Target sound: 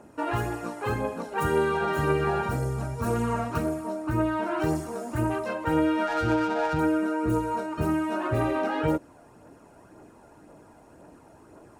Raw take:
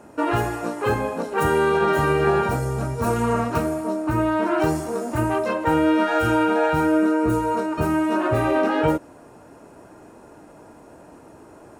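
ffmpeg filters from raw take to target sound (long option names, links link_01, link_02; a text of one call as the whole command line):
ffmpeg -i in.wav -filter_complex "[0:a]aphaser=in_gain=1:out_gain=1:delay=1.5:decay=0.35:speed=1.9:type=triangular,asettb=1/sr,asplit=3[link_01][link_02][link_03];[link_01]atrim=end=6.074[link_04];[link_02]atrim=start=6.07:end=6.79,asetpts=PTS-STARTPTS,afade=type=in:duration=0.004:curve=qsin,afade=type=out:start_time=0.716:duration=0.004:curve=qsin,adynamicsmooth=sensitivity=3:basefreq=990[link_05];[link_03]atrim=start=6.786[link_06];[link_04][link_05]acrossfade=duration=0.004:curve1=hsin:curve2=qsin[link_07];[link_07][link_06]acrossfade=duration=0.004:curve1=qsin:curve2=hsin,volume=-6.5dB" out.wav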